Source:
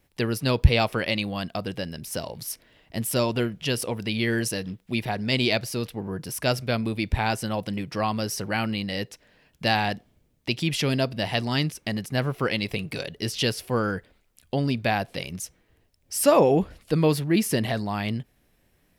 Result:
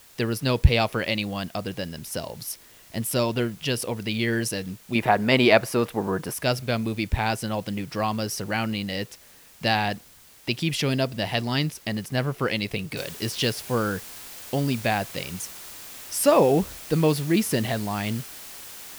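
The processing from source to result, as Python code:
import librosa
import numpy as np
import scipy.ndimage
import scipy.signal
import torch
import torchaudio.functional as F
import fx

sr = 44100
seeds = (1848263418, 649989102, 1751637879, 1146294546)

y = fx.curve_eq(x, sr, hz=(110.0, 300.0, 1200.0, 4500.0, 8200.0), db=(0, 6, 13, -3, 1), at=(4.95, 6.34))
y = fx.noise_floor_step(y, sr, seeds[0], at_s=12.97, before_db=-52, after_db=-41, tilt_db=0.0)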